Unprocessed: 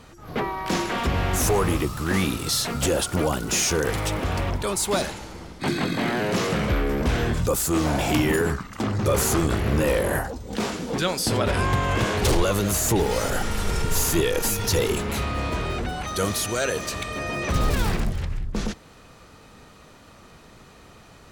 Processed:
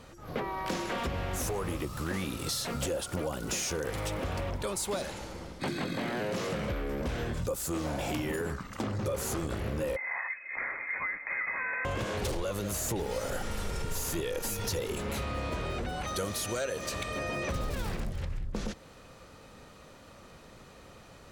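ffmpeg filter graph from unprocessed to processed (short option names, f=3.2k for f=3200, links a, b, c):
-filter_complex "[0:a]asettb=1/sr,asplit=3[a][b][c];[a]atrim=end=9.964[d];[b]atrim=start=9.96:end=11.85,asetpts=PTS-STARTPTS,afade=t=in:d=0.004:c=qsin,afade=t=out:st=1.886:d=0.004:c=qsin,lowshelf=f=400:t=q:w=3:g=-10.5,acompressor=threshold=-24dB:ratio=2.5:attack=3.2:release=140:knee=1:detection=peak,lowpass=f=2.2k:t=q:w=0.5098,lowpass=f=2.2k:t=q:w=0.6013,lowpass=f=2.2k:t=q:w=0.9,lowpass=f=2.2k:t=q:w=2.563,afreqshift=-2600[e];[c]atrim=start=11.846[f];[d][e]acrossfade=d=0.004:c1=hsin:c2=qsin[g];[g][f]acrossfade=d=0.004:c1=qsin:c2=hsin,equalizer=f=540:w=7.5:g=7.5,acompressor=threshold=-26dB:ratio=6,volume=-4dB"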